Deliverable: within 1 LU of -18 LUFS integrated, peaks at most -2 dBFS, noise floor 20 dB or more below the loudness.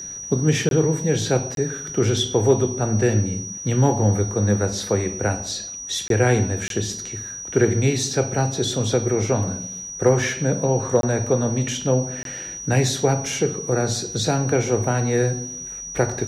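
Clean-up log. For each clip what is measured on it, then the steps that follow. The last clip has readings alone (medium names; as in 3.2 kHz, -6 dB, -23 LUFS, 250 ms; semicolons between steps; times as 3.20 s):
dropouts 6; longest dropout 22 ms; steady tone 5.8 kHz; tone level -31 dBFS; loudness -21.5 LUFS; peak level -6.0 dBFS; loudness target -18.0 LUFS
-> interpolate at 0.69/1.55/6.08/6.68/11.01/12.23 s, 22 ms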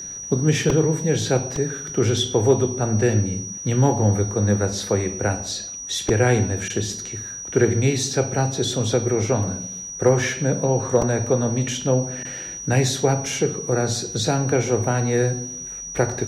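dropouts 0; steady tone 5.8 kHz; tone level -31 dBFS
-> band-stop 5.8 kHz, Q 30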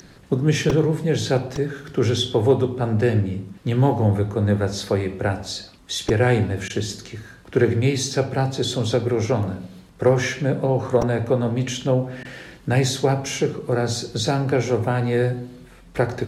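steady tone not found; loudness -22.0 LUFS; peak level -6.5 dBFS; loudness target -18.0 LUFS
-> trim +4 dB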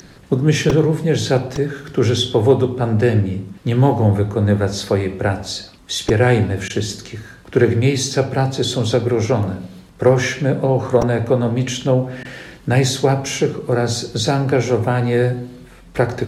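loudness -18.0 LUFS; peak level -2.5 dBFS; noise floor -43 dBFS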